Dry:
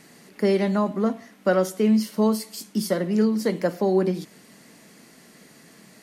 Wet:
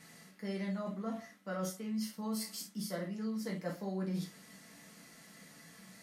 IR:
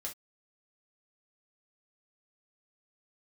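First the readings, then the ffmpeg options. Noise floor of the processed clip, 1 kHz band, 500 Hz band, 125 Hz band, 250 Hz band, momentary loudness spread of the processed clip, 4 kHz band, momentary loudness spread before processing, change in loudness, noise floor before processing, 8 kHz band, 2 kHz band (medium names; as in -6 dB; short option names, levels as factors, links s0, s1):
-58 dBFS, -16.0 dB, -20.0 dB, -12.0 dB, -15.5 dB, 17 LU, -10.0 dB, 7 LU, -16.0 dB, -52 dBFS, -8.5 dB, -13.5 dB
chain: -filter_complex "[0:a]equalizer=f=410:t=o:w=1.1:g=-7.5,areverse,acompressor=threshold=0.0251:ratio=6,areverse[s0];[1:a]atrim=start_sample=2205[s1];[s0][s1]afir=irnorm=-1:irlink=0,volume=0.708"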